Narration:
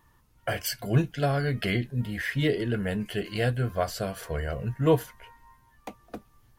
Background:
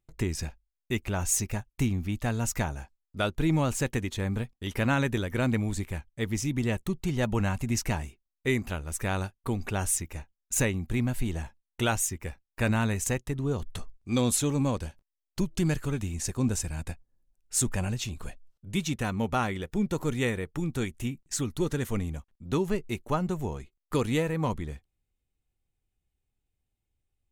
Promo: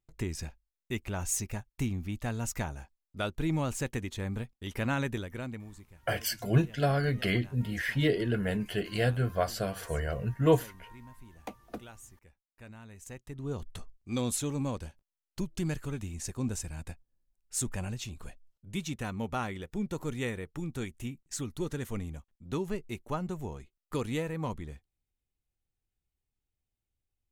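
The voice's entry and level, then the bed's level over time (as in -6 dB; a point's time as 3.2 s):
5.60 s, -1.5 dB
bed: 5.11 s -5 dB
5.99 s -23.5 dB
12.85 s -23.5 dB
13.52 s -6 dB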